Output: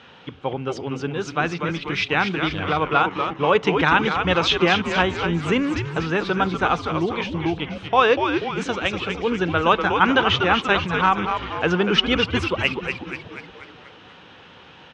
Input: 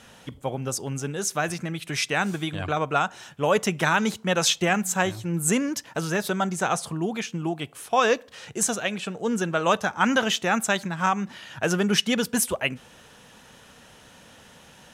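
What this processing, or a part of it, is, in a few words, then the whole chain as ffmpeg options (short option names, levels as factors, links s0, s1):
frequency-shifting delay pedal into a guitar cabinet: -filter_complex "[0:a]asplit=8[s0][s1][s2][s3][s4][s5][s6][s7];[s1]adelay=242,afreqshift=-140,volume=0.501[s8];[s2]adelay=484,afreqshift=-280,volume=0.275[s9];[s3]adelay=726,afreqshift=-420,volume=0.151[s10];[s4]adelay=968,afreqshift=-560,volume=0.0832[s11];[s5]adelay=1210,afreqshift=-700,volume=0.0457[s12];[s6]adelay=1452,afreqshift=-840,volume=0.0251[s13];[s7]adelay=1694,afreqshift=-980,volume=0.0138[s14];[s0][s8][s9][s10][s11][s12][s13][s14]amix=inputs=8:normalize=0,highpass=110,equalizer=f=130:t=q:w=4:g=-5,equalizer=f=220:t=q:w=4:g=-8,equalizer=f=630:t=q:w=4:g=-8,equalizer=f=1800:t=q:w=4:g=-4,lowpass=f=3700:w=0.5412,lowpass=f=3700:w=1.3066,volume=2"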